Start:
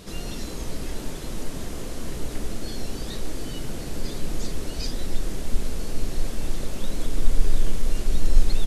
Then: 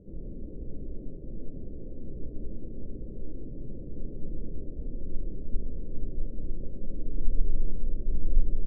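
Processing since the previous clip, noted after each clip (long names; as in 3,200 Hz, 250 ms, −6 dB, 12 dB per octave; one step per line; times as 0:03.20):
samples sorted by size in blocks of 32 samples
Chebyshev low-pass filter 570 Hz, order 5
level −5.5 dB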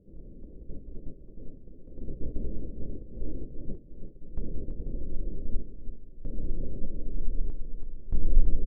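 noise gate −31 dBFS, range −10 dB
sample-and-hold tremolo 1.6 Hz, depth 90%
single-tap delay 332 ms −8 dB
level +4 dB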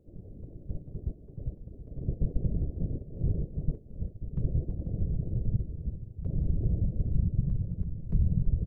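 downward compressor 6 to 1, threshold −21 dBFS, peak gain reduction 11 dB
random phases in short frames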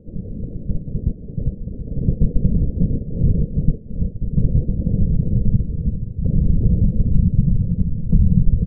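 spectral tilt −3 dB per octave
in parallel at +1.5 dB: downward compressor, threshold −21 dBFS, peak gain reduction 17 dB
on the sum: hollow resonant body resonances 210/470 Hz, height 13 dB, ringing for 25 ms
level −5.5 dB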